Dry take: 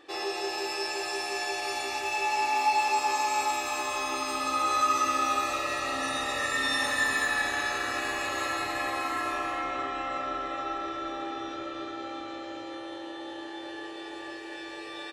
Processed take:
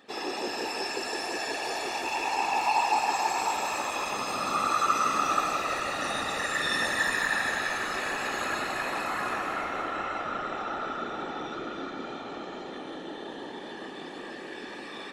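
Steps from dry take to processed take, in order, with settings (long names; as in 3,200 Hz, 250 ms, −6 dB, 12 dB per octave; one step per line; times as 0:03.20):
random phases in short frames
delay that swaps between a low-pass and a high-pass 160 ms, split 1,900 Hz, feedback 56%, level −4 dB
level −1.5 dB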